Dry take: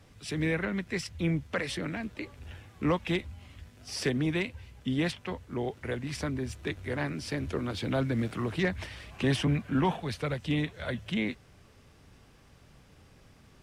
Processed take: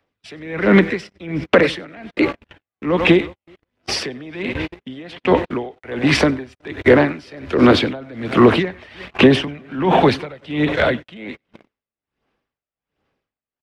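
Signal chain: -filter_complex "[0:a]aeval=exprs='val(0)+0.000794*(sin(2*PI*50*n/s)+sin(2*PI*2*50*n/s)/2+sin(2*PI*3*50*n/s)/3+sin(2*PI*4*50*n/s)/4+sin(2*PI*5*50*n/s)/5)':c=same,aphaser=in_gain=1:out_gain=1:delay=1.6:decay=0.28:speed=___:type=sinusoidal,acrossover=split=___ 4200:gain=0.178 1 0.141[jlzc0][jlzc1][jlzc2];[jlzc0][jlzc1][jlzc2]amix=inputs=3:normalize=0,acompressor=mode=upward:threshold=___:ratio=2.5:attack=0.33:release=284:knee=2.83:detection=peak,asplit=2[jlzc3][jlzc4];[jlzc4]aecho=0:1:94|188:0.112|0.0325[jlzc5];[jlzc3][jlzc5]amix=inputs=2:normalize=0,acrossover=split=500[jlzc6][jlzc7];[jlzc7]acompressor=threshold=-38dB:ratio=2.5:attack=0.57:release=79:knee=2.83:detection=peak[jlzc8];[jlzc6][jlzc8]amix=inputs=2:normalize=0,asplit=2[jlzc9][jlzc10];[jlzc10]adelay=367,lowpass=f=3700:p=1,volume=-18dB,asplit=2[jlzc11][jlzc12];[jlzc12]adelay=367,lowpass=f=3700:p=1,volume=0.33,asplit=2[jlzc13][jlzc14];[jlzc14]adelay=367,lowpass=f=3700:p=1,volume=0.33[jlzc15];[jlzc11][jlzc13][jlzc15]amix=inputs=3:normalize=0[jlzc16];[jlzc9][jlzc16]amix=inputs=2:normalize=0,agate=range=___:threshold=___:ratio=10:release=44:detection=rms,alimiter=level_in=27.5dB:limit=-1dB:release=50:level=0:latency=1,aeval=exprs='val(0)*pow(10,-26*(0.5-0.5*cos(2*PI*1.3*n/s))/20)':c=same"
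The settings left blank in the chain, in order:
1.3, 260, -47dB, -41dB, -49dB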